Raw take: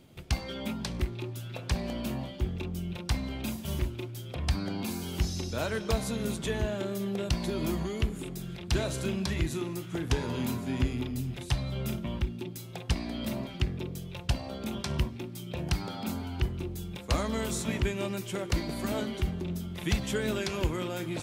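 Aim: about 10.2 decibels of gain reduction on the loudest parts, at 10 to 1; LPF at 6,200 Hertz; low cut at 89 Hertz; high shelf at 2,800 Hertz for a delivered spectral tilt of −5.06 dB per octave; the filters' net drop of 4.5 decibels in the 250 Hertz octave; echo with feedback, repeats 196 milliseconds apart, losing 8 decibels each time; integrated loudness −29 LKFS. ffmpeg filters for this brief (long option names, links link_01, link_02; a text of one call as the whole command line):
ffmpeg -i in.wav -af "highpass=89,lowpass=6200,equalizer=frequency=250:width_type=o:gain=-6,highshelf=frequency=2800:gain=-4,acompressor=threshold=-37dB:ratio=10,aecho=1:1:196|392|588|784|980:0.398|0.159|0.0637|0.0255|0.0102,volume=12.5dB" out.wav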